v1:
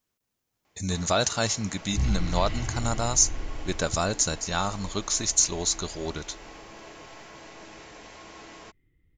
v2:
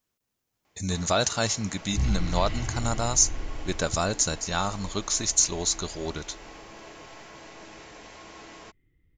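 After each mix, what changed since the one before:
no change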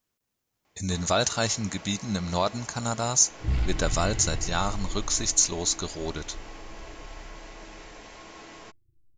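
second sound: entry +1.50 s

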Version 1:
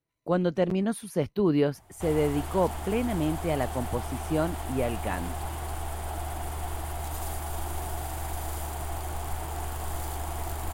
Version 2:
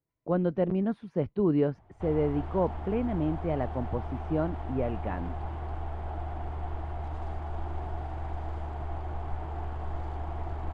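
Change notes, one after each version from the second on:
master: add tape spacing loss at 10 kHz 42 dB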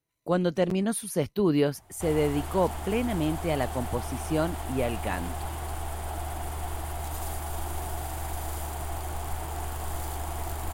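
speech: add treble shelf 4.1 kHz +9.5 dB; master: remove tape spacing loss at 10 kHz 42 dB

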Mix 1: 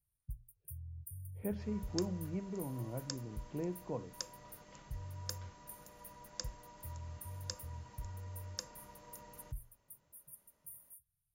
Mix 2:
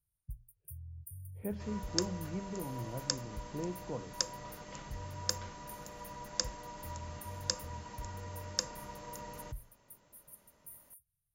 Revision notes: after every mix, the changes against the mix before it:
second sound +9.5 dB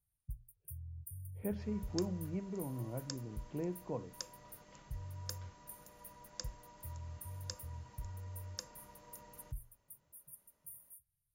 second sound -11.5 dB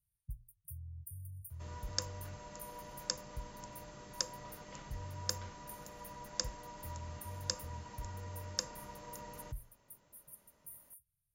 speech: muted; second sound +8.5 dB

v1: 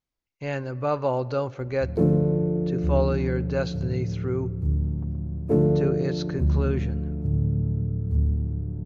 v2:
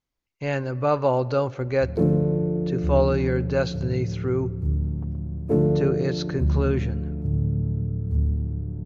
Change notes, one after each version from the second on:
speech +3.5 dB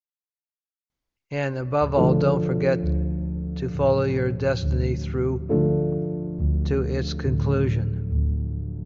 speech: entry +0.90 s; background: add distance through air 320 m

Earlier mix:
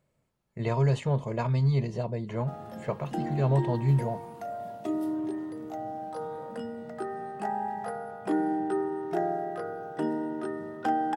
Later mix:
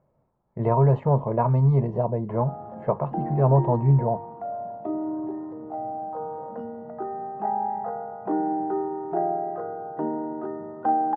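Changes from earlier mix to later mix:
speech +5.0 dB; master: add resonant low-pass 910 Hz, resonance Q 1.9

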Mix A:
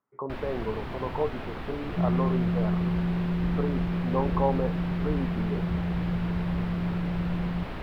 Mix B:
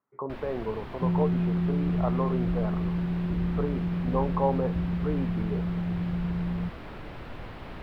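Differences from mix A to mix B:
first sound -4.5 dB; second sound: entry -0.95 s

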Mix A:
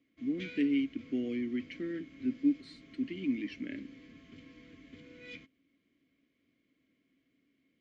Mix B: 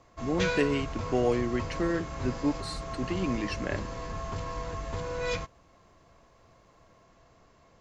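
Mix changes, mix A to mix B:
speech -4.5 dB; master: remove vowel filter i

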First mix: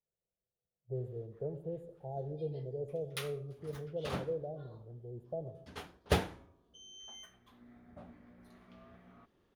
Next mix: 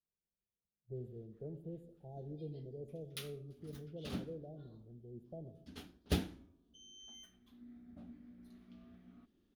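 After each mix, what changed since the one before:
master: add graphic EQ 125/250/500/1000/2000/8000 Hz -8/+8/-10/-12/-7/-5 dB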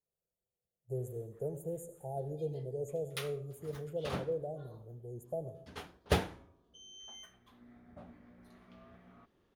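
speech: remove distance through air 500 m; master: add graphic EQ 125/250/500/1000/2000/8000 Hz +8/-8/+10/+12/+7/+5 dB

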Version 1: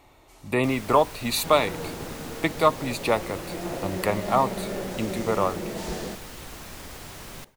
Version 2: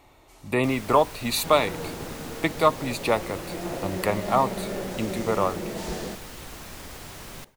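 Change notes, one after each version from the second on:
no change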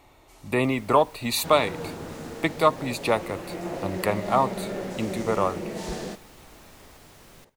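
first sound -10.5 dB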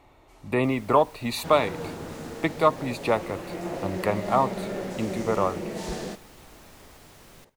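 speech: add treble shelf 3.7 kHz -9.5 dB

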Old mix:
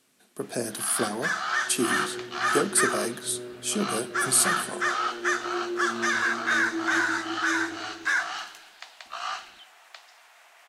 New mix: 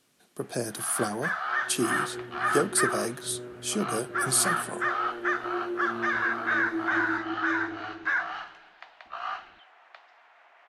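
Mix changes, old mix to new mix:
first sound: add low-pass 2.1 kHz 12 dB/octave; reverb: off

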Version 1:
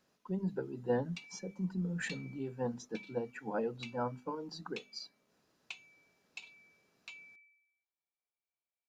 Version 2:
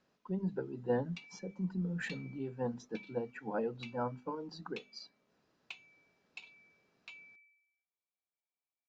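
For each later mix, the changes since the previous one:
master: add distance through air 100 m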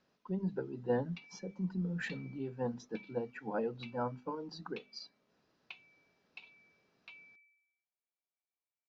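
background: add distance through air 190 m; master: add resonant high shelf 7 kHz -6.5 dB, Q 1.5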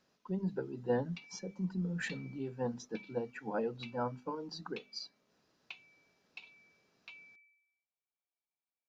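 master: remove distance through air 100 m

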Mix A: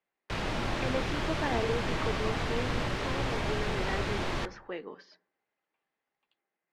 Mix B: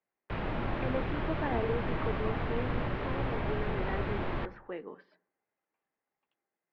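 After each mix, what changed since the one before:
master: add distance through air 480 m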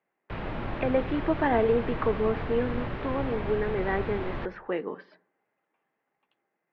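speech +10.0 dB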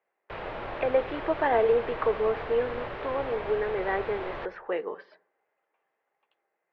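master: add resonant low shelf 340 Hz -9.5 dB, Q 1.5

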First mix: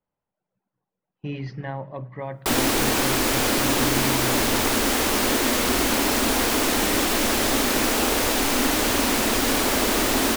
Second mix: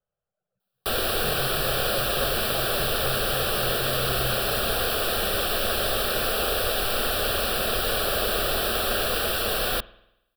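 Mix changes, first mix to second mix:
background: entry -1.60 s; master: add static phaser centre 1.4 kHz, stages 8

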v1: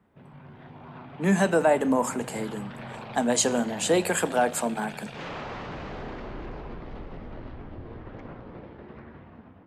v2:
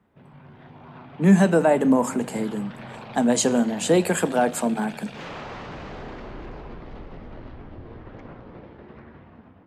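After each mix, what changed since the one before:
speech: add bass shelf 290 Hz +11.5 dB; background: add treble shelf 9.2 kHz +9 dB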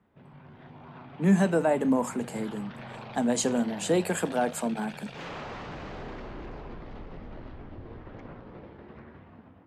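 speech -5.0 dB; reverb: off

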